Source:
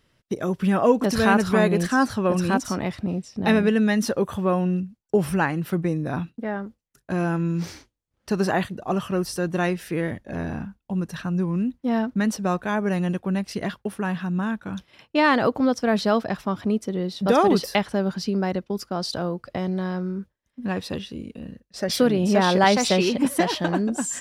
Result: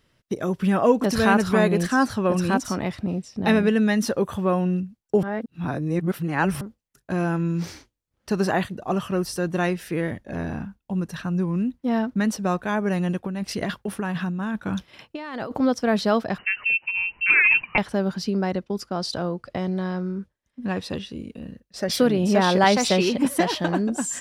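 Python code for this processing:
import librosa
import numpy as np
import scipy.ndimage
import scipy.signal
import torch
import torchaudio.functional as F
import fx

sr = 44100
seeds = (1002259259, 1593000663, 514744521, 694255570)

y = fx.over_compress(x, sr, threshold_db=-28.0, ratio=-1.0, at=(13.24, 15.57))
y = fx.freq_invert(y, sr, carrier_hz=2900, at=(16.38, 17.78))
y = fx.lowpass(y, sr, hz=11000.0, slope=12, at=(18.31, 21.15))
y = fx.edit(y, sr, fx.reverse_span(start_s=5.23, length_s=1.38), tone=tone)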